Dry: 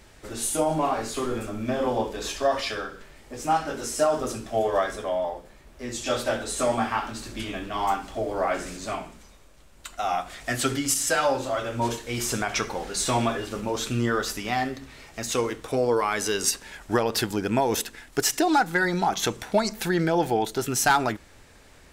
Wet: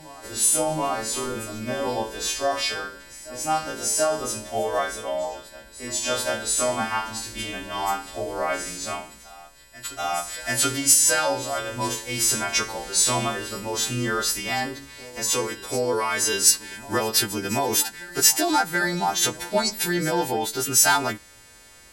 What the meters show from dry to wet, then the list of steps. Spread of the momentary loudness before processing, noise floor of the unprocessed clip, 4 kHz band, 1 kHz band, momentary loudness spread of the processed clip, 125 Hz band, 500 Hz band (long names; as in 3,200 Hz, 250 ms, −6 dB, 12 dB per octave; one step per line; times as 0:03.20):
10 LU, −52 dBFS, +6.5 dB, −0.5 dB, 14 LU, −2.0 dB, −1.5 dB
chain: every partial snapped to a pitch grid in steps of 2 semitones
backwards echo 734 ms −18.5 dB
level −1 dB